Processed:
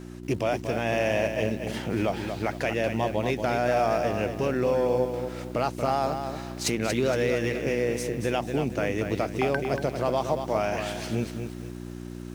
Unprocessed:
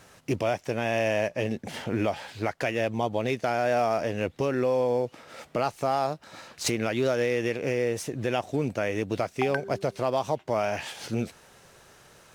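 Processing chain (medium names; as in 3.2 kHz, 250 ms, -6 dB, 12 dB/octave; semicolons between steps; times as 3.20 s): mains buzz 60 Hz, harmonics 6, -41 dBFS 0 dB/octave; bit-crushed delay 233 ms, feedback 35%, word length 8-bit, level -7 dB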